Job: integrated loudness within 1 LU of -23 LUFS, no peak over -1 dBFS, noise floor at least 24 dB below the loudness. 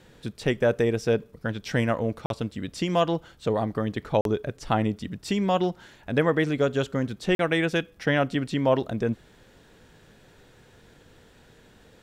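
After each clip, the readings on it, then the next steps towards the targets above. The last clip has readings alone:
dropouts 3; longest dropout 42 ms; loudness -26.5 LUFS; peak -9.0 dBFS; loudness target -23.0 LUFS
-> interpolate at 2.26/4.21/7.35, 42 ms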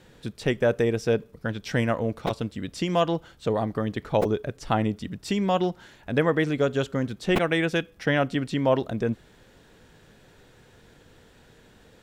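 dropouts 0; loudness -26.0 LUFS; peak -9.0 dBFS; loudness target -23.0 LUFS
-> gain +3 dB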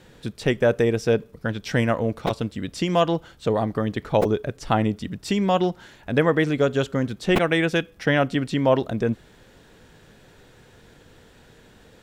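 loudness -23.0 LUFS; peak -6.0 dBFS; noise floor -53 dBFS

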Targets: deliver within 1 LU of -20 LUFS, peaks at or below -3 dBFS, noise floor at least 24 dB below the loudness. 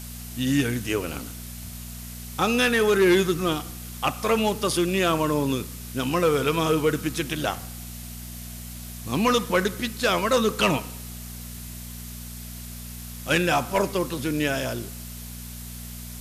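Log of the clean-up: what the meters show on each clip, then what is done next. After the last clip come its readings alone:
hum 60 Hz; harmonics up to 240 Hz; hum level -36 dBFS; noise floor -38 dBFS; noise floor target -48 dBFS; loudness -24.0 LUFS; peak -12.0 dBFS; loudness target -20.0 LUFS
-> de-hum 60 Hz, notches 4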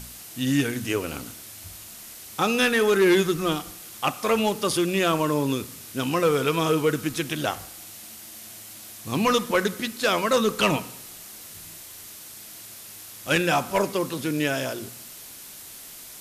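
hum none; noise floor -43 dBFS; noise floor target -48 dBFS
-> noise print and reduce 6 dB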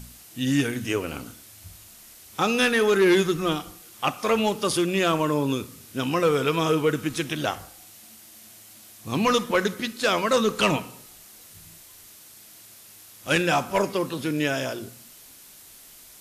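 noise floor -49 dBFS; loudness -24.0 LUFS; peak -11.0 dBFS; loudness target -20.0 LUFS
-> gain +4 dB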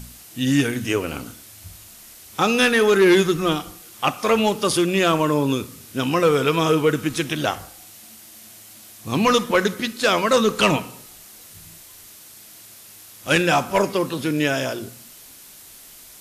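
loudness -20.0 LUFS; peak -7.0 dBFS; noise floor -45 dBFS

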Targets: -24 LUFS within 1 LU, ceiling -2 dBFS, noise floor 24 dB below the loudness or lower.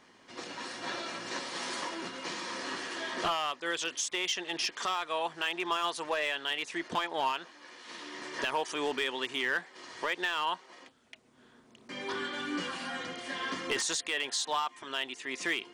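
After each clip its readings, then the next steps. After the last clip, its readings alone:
clipped 0.4%; flat tops at -23.0 dBFS; loudness -33.5 LUFS; peak -23.0 dBFS; loudness target -24.0 LUFS
-> clip repair -23 dBFS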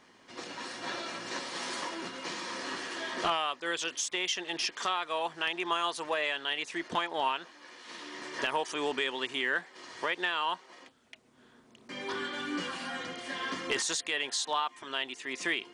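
clipped 0.0%; loudness -33.0 LUFS; peak -14.0 dBFS; loudness target -24.0 LUFS
-> gain +9 dB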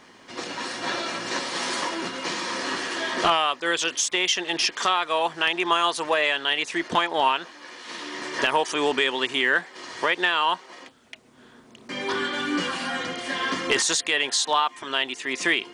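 loudness -24.0 LUFS; peak -5.0 dBFS; noise floor -51 dBFS

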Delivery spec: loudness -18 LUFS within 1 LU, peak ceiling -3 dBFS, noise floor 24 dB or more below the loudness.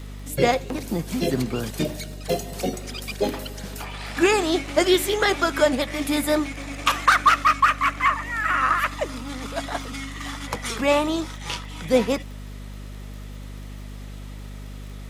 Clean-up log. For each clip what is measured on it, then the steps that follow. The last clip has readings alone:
ticks 27/s; hum 50 Hz; harmonics up to 250 Hz; hum level -34 dBFS; loudness -23.0 LUFS; peak -3.0 dBFS; loudness target -18.0 LUFS
-> de-click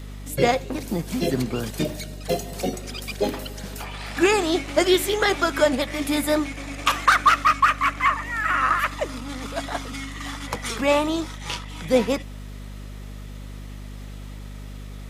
ticks 0.13/s; hum 50 Hz; harmonics up to 250 Hz; hum level -34 dBFS
-> de-hum 50 Hz, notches 5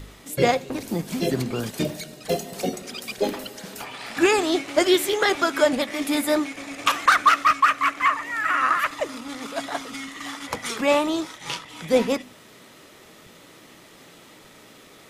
hum none; loudness -23.0 LUFS; peak -3.0 dBFS; loudness target -18.0 LUFS
-> gain +5 dB; limiter -3 dBFS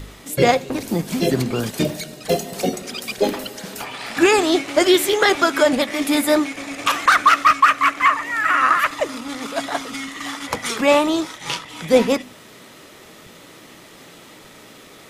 loudness -18.5 LUFS; peak -3.0 dBFS; noise floor -44 dBFS

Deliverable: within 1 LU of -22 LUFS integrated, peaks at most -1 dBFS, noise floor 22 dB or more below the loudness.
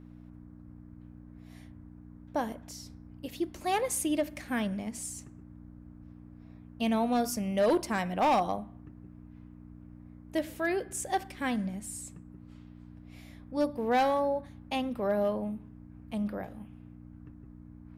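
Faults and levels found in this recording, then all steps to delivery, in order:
clipped 0.4%; flat tops at -20.5 dBFS; hum 60 Hz; harmonics up to 300 Hz; hum level -48 dBFS; loudness -31.5 LUFS; peak -20.5 dBFS; loudness target -22.0 LUFS
-> clip repair -20.5 dBFS; de-hum 60 Hz, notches 5; gain +9.5 dB

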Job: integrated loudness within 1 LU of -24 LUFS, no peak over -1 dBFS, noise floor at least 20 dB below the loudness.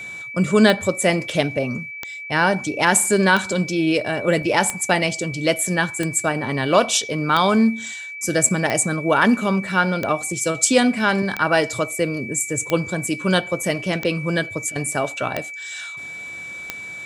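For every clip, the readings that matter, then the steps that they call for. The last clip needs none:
clicks 13; steady tone 2300 Hz; tone level -31 dBFS; loudness -20.0 LUFS; peak -1.5 dBFS; loudness target -24.0 LUFS
-> de-click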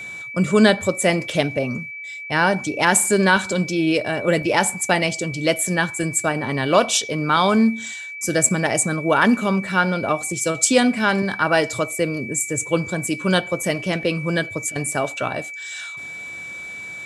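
clicks 0; steady tone 2300 Hz; tone level -31 dBFS
-> notch 2300 Hz, Q 30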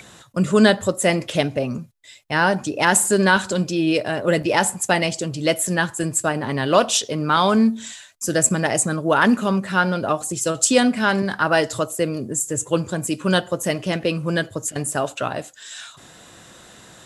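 steady tone none; loudness -20.0 LUFS; peak -1.5 dBFS; loudness target -24.0 LUFS
-> gain -4 dB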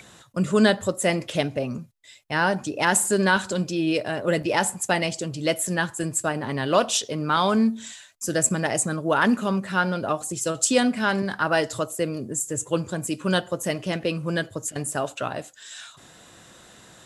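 loudness -24.0 LUFS; peak -5.5 dBFS; noise floor -50 dBFS

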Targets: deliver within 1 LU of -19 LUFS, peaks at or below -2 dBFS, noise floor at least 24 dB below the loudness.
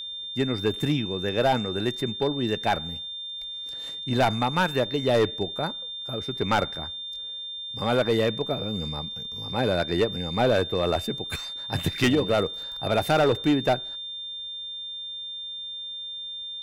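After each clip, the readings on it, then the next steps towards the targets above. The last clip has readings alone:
clipped 1.0%; flat tops at -15.5 dBFS; steady tone 3600 Hz; tone level -33 dBFS; loudness -26.5 LUFS; peak -15.5 dBFS; loudness target -19.0 LUFS
-> clip repair -15.5 dBFS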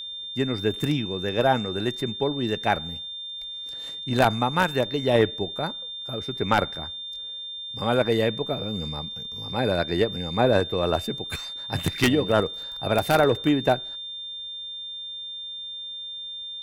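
clipped 0.0%; steady tone 3600 Hz; tone level -33 dBFS
-> notch 3600 Hz, Q 30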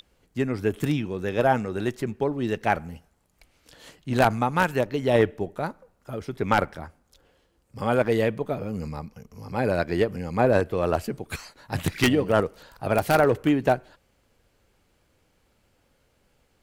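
steady tone none; loudness -25.0 LUFS; peak -6.0 dBFS; loudness target -19.0 LUFS
-> gain +6 dB; limiter -2 dBFS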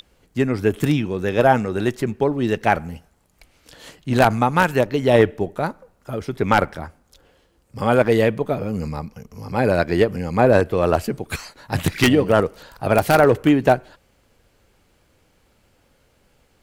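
loudness -19.5 LUFS; peak -2.0 dBFS; noise floor -61 dBFS

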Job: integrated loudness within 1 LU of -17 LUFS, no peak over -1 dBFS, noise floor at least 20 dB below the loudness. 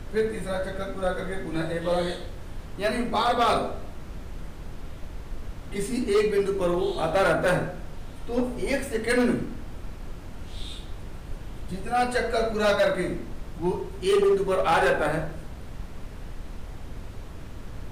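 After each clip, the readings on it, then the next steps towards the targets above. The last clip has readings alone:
clipped 1.3%; flat tops at -16.5 dBFS; noise floor -40 dBFS; noise floor target -46 dBFS; loudness -25.5 LUFS; peak -16.5 dBFS; loudness target -17.0 LUFS
-> clip repair -16.5 dBFS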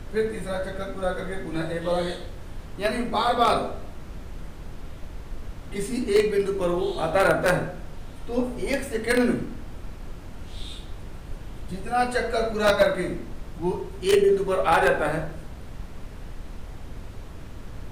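clipped 0.0%; noise floor -40 dBFS; noise floor target -45 dBFS
-> noise print and reduce 6 dB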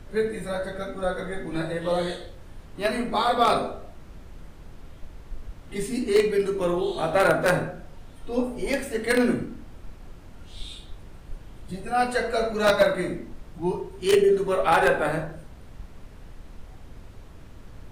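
noise floor -46 dBFS; loudness -24.5 LUFS; peak -7.5 dBFS; loudness target -17.0 LUFS
-> gain +7.5 dB; limiter -1 dBFS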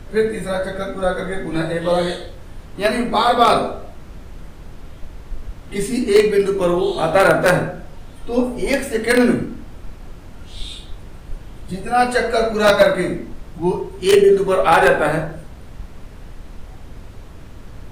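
loudness -17.5 LUFS; peak -1.0 dBFS; noise floor -38 dBFS

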